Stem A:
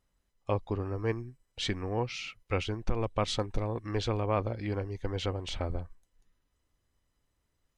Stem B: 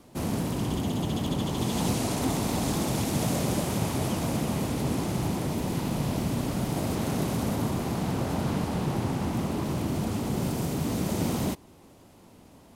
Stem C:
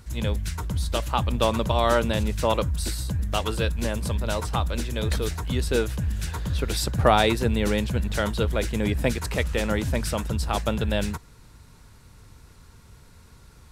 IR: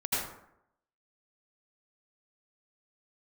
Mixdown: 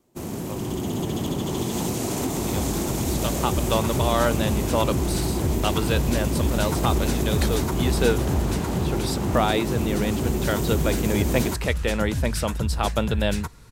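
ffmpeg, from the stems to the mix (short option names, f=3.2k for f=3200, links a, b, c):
-filter_complex "[0:a]volume=-7.5dB[a];[1:a]equalizer=f=370:t=o:w=0.32:g=8,dynaudnorm=f=270:g=7:m=11.5dB,aexciter=amount=2.1:drive=2.1:freq=6.3k,volume=-4dB[b];[2:a]dynaudnorm=f=100:g=17:m=11.5dB,adelay=2300,volume=-5.5dB[c];[a][b]amix=inputs=2:normalize=0,agate=range=-10dB:threshold=-39dB:ratio=16:detection=peak,acompressor=threshold=-23dB:ratio=6,volume=0dB[d];[c][d]amix=inputs=2:normalize=0"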